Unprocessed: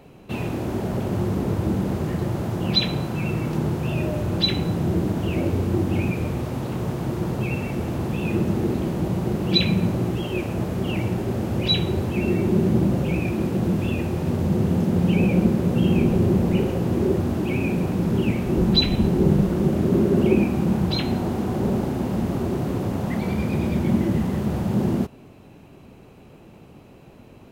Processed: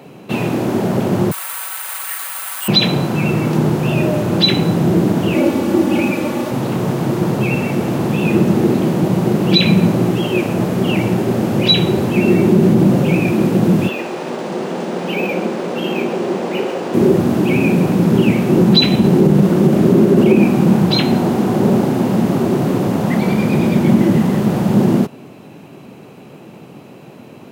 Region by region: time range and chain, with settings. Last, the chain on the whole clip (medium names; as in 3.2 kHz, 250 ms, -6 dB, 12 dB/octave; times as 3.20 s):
1.31–2.68 s: high-pass 1.2 kHz 24 dB/octave + comb 5.3 ms, depth 99% + careless resampling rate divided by 4×, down filtered, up zero stuff
5.34–6.51 s: high-pass 210 Hz 6 dB/octave + comb 3.5 ms, depth 61%
13.88–16.94 s: high-pass 480 Hz + decimation joined by straight lines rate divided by 3×
whole clip: high-pass 130 Hz 24 dB/octave; loudness maximiser +11 dB; trim -1 dB